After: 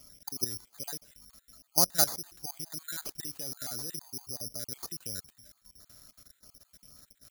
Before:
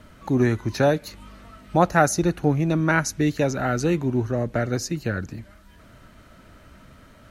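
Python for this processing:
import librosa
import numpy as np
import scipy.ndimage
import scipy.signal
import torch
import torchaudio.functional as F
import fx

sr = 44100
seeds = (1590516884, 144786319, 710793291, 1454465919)

y = fx.spec_dropout(x, sr, seeds[0], share_pct=40)
y = fx.level_steps(y, sr, step_db=17)
y = fx.high_shelf(y, sr, hz=fx.line((0.99, 2900.0), (1.9, 5400.0)), db=-10.0, at=(0.99, 1.9), fade=0.02)
y = (np.kron(y[::8], np.eye(8)[0]) * 8)[:len(y)]
y = y * librosa.db_to_amplitude(-12.5)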